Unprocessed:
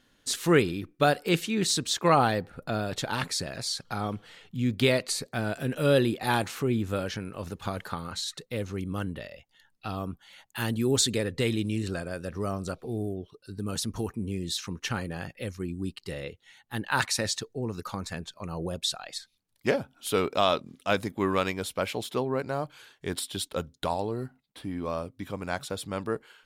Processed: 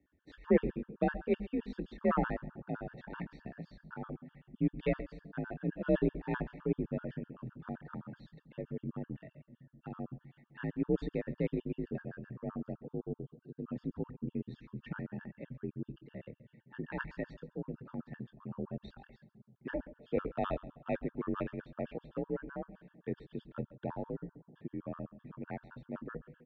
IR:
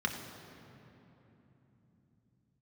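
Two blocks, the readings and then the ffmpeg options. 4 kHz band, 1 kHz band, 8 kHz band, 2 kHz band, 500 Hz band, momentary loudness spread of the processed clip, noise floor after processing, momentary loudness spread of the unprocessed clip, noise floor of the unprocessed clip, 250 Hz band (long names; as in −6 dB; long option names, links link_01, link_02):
below −25 dB, −13.5 dB, below −40 dB, −13.5 dB, −8.5 dB, 15 LU, −75 dBFS, 14 LU, −69 dBFS, −6.0 dB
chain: -filter_complex "[0:a]asplit=2[link_01][link_02];[link_02]adelay=25,volume=-12.5dB[link_03];[link_01][link_03]amix=inputs=2:normalize=0,aeval=exprs='0.398*(cos(1*acos(clip(val(0)/0.398,-1,1)))-cos(1*PI/2))+0.0398*(cos(3*acos(clip(val(0)/0.398,-1,1)))-cos(3*PI/2))+0.0126*(cos(6*acos(clip(val(0)/0.398,-1,1)))-cos(6*PI/2))+0.00794*(cos(7*acos(clip(val(0)/0.398,-1,1)))-cos(7*PI/2))':channel_layout=same,aecho=1:1:137|274:0.112|0.0292,afreqshift=42,lowpass=frequency=1800:width=0.5412,lowpass=frequency=1800:width=1.3066,equalizer=frequency=970:width=0.59:gain=-12.5,bandreject=frequency=50:width_type=h:width=6,bandreject=frequency=100:width_type=h:width=6,bandreject=frequency=150:width_type=h:width=6,bandreject=frequency=200:width_type=h:width=6,bandreject=frequency=250:width_type=h:width=6,asplit=2[link_04][link_05];[1:a]atrim=start_sample=2205,asetrate=41013,aresample=44100,lowpass=frequency=1300:width=0.5412,lowpass=frequency=1300:width=1.3066[link_06];[link_05][link_06]afir=irnorm=-1:irlink=0,volume=-22.5dB[link_07];[link_04][link_07]amix=inputs=2:normalize=0,afftfilt=real='re*gt(sin(2*PI*7.8*pts/sr)*(1-2*mod(floor(b*sr/1024/900),2)),0)':imag='im*gt(sin(2*PI*7.8*pts/sr)*(1-2*mod(floor(b*sr/1024/900),2)),0)':win_size=1024:overlap=0.75,volume=3.5dB"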